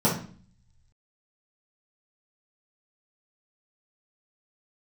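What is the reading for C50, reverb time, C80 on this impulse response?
5.5 dB, 0.45 s, 11.5 dB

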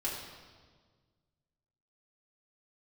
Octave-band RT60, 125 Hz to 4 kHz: 2.3, 2.0, 1.7, 1.5, 1.3, 1.3 seconds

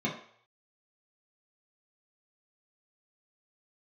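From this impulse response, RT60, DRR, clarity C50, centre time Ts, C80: 0.60 s, −4.5 dB, 7.0 dB, 28 ms, 11.0 dB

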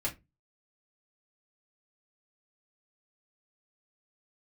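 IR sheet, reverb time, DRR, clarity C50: 0.20 s, −5.0 dB, 16.0 dB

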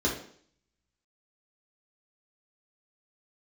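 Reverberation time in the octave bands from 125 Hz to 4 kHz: 0.60, 0.60, 0.60, 0.55, 0.55, 0.60 seconds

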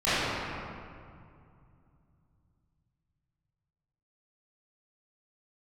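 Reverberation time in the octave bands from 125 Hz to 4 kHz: 4.4, 3.3, 2.4, 2.3, 1.9, 1.4 seconds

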